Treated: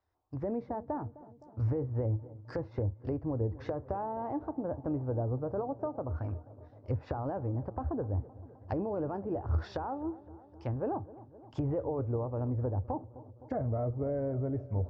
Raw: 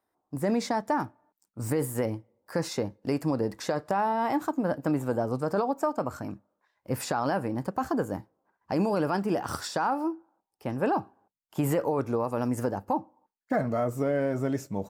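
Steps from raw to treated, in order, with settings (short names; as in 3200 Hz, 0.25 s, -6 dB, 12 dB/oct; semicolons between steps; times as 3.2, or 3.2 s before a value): steep low-pass 6100 Hz; treble ducked by the level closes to 640 Hz, closed at -27.5 dBFS; resonant low shelf 120 Hz +13.5 dB, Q 3; on a send: dark delay 0.258 s, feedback 69%, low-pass 1200 Hz, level -18 dB; on the sum: gain -4 dB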